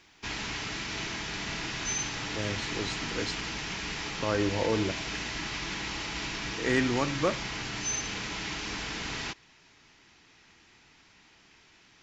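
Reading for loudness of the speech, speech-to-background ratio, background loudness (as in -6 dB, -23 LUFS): -31.5 LUFS, 2.0 dB, -33.5 LUFS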